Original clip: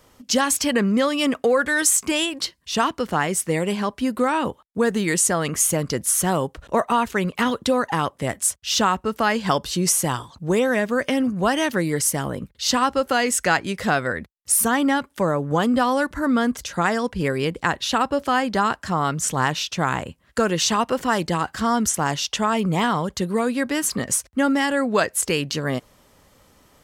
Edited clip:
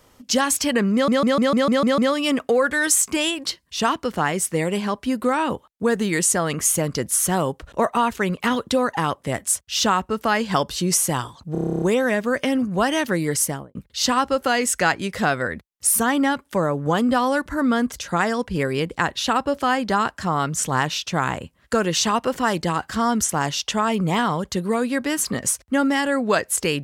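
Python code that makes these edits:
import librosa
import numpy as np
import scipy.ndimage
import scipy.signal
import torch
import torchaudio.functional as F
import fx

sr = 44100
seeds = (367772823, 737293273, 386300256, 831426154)

y = fx.studio_fade_out(x, sr, start_s=12.08, length_s=0.32)
y = fx.edit(y, sr, fx.stutter(start_s=0.93, slice_s=0.15, count=8),
    fx.stutter(start_s=10.47, slice_s=0.03, count=11), tone=tone)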